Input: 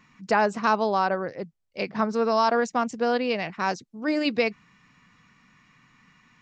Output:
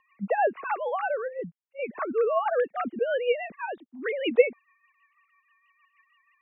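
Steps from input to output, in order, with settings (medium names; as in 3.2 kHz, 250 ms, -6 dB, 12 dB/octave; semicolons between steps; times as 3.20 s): formants replaced by sine waves; rotary cabinet horn 6.3 Hz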